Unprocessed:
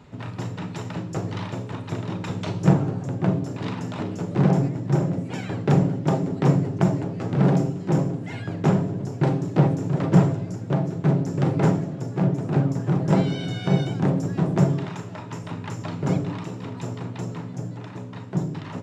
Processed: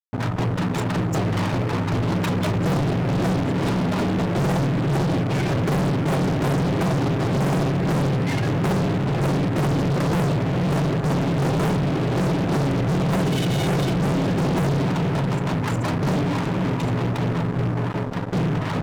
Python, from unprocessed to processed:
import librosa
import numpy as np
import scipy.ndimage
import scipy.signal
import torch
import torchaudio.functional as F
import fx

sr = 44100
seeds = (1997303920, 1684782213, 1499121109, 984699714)

y = fx.echo_diffused(x, sr, ms=520, feedback_pct=43, wet_db=-10)
y = fx.spec_gate(y, sr, threshold_db=-25, keep='strong')
y = fx.fuzz(y, sr, gain_db=37.0, gate_db=-38.0)
y = y * librosa.db_to_amplitude(-6.0)